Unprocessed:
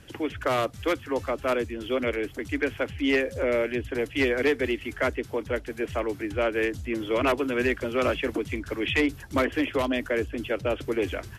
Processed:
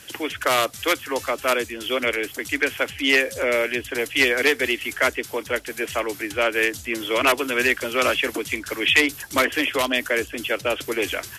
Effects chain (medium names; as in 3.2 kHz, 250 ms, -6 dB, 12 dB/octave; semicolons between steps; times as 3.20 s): tilt EQ +3.5 dB/octave; trim +5.5 dB